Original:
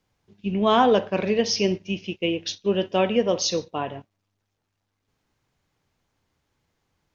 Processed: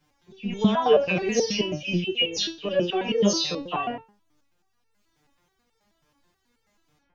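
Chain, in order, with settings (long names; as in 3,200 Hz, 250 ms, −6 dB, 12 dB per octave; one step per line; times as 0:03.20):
every frequency bin delayed by itself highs early, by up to 172 ms
boost into a limiter +18.5 dB
step-sequenced resonator 9.3 Hz 150–450 Hz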